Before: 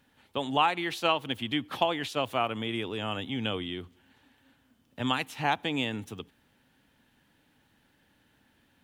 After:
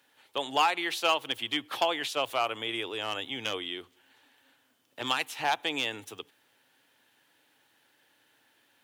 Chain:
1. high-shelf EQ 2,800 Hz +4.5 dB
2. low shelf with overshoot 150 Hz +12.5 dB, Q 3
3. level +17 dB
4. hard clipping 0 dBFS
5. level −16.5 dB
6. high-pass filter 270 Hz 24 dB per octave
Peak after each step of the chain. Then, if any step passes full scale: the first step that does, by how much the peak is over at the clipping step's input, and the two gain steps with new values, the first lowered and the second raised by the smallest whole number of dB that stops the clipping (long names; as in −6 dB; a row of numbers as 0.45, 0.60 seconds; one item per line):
−9.0, −10.0, +7.0, 0.0, −16.5, −11.5 dBFS
step 3, 7.0 dB
step 3 +10 dB, step 5 −9.5 dB